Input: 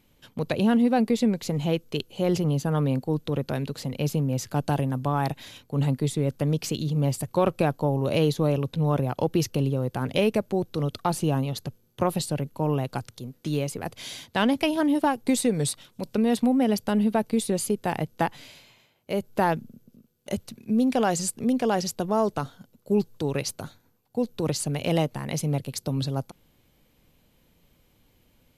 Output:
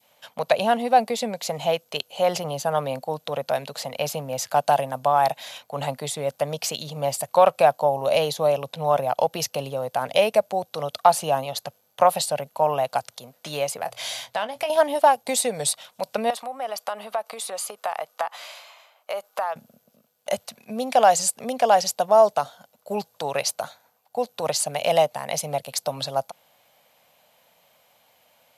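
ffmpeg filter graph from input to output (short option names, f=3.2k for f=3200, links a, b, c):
-filter_complex "[0:a]asettb=1/sr,asplit=3[a][b][c];[a]atrim=end=13.814[d];[b]atrim=start=13.81:end=14.7,asetpts=PTS-STARTPTS,afade=t=in:d=0.004:c=qsin,afade=t=out:st=0.886:d=0.004:c=qsin,equalizer=f=120:w=5.8:g=12,acompressor=threshold=-30dB:ratio=6:attack=3.2:release=140:knee=1:detection=peak,asplit=2[e][f];[f]adelay=23,volume=-12.5dB[g];[e][g]amix=inputs=2:normalize=0,atrim=end_sample=39249[h];[c]atrim=start=14.696[i];[d][h]acrossfade=d=0.004:c1=hsin:c2=qsin[j];[j][i]acrossfade=d=0.004:c1=qsin:c2=hsin,asettb=1/sr,asplit=3[k][l][m];[k]atrim=end=16.304[n];[l]atrim=start=16.3:end=19.56,asetpts=PTS-STARTPTS,afade=t=in:d=0.004:c=qsin,afade=t=out:st=3.256:d=0.004:c=qsin,highpass=400,equalizer=f=1.2k:t=o:w=0.36:g=10,acompressor=threshold=-33dB:ratio=5:attack=3.2:release=140:knee=1:detection=peak[o];[m]atrim=start=19.556[p];[n][o]acrossfade=d=0.004:c1=hsin:c2=qsin[q];[q][p]acrossfade=d=0.004:c1=qsin:c2=hsin,adynamicequalizer=threshold=0.00891:dfrequency=1400:dqfactor=0.71:tfrequency=1400:tqfactor=0.71:attack=5:release=100:ratio=0.375:range=3:mode=cutabove:tftype=bell,highpass=170,lowshelf=f=470:t=q:w=3:g=-11.5,volume=6.5dB"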